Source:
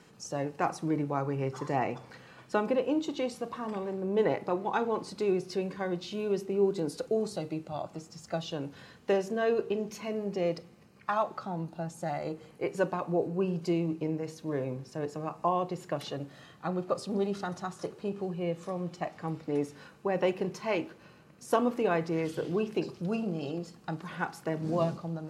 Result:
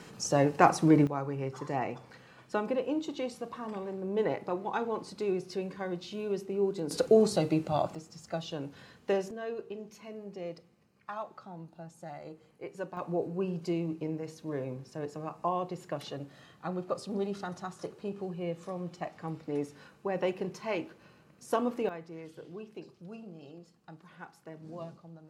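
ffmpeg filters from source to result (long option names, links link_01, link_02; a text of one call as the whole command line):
ffmpeg -i in.wav -af "asetnsamples=nb_out_samples=441:pad=0,asendcmd='1.07 volume volume -3dB;6.91 volume volume 7.5dB;7.95 volume volume -2dB;9.31 volume volume -10dB;12.97 volume volume -3dB;21.89 volume volume -14dB',volume=8dB" out.wav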